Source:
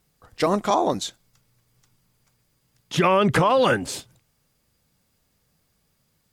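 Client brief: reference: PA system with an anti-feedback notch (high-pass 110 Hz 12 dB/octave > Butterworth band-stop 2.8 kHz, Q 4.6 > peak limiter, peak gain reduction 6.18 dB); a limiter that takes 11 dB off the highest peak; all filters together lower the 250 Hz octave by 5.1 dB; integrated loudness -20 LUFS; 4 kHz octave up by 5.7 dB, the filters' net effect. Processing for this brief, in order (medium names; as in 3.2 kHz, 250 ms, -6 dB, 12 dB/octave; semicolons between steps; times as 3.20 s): peaking EQ 250 Hz -7.5 dB; peaking EQ 4 kHz +8.5 dB; peak limiter -17 dBFS; high-pass 110 Hz 12 dB/octave; Butterworth band-stop 2.8 kHz, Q 4.6; trim +11.5 dB; peak limiter -10 dBFS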